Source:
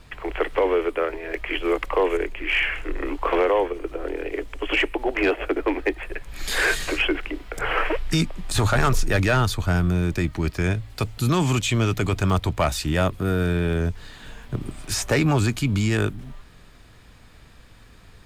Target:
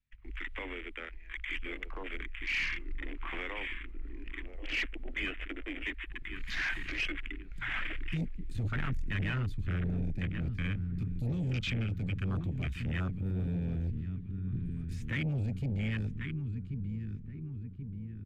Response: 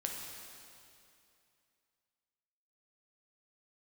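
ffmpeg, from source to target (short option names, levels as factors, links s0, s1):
-filter_complex "[0:a]agate=range=0.178:threshold=0.0178:ratio=16:detection=peak,firequalizer=gain_entry='entry(230,0);entry(410,-21);entry(2000,3);entry(5300,-8)':delay=0.05:min_phase=1,asplit=2[s0][s1];[s1]adelay=1084,lowpass=f=2000:p=1,volume=0.422,asplit=2[s2][s3];[s3]adelay=1084,lowpass=f=2000:p=1,volume=0.54,asplit=2[s4][s5];[s5]adelay=1084,lowpass=f=2000:p=1,volume=0.54,asplit=2[s6][s7];[s7]adelay=1084,lowpass=f=2000:p=1,volume=0.54,asplit=2[s8][s9];[s9]adelay=1084,lowpass=f=2000:p=1,volume=0.54,asplit=2[s10][s11];[s11]adelay=1084,lowpass=f=2000:p=1,volume=0.54,asplit=2[s12][s13];[s13]adelay=1084,lowpass=f=2000:p=1,volume=0.54[s14];[s2][s4][s6][s8][s10][s12][s14]amix=inputs=7:normalize=0[s15];[s0][s15]amix=inputs=2:normalize=0,asoftclip=type=tanh:threshold=0.075,afwtdn=0.0224,volume=0.501"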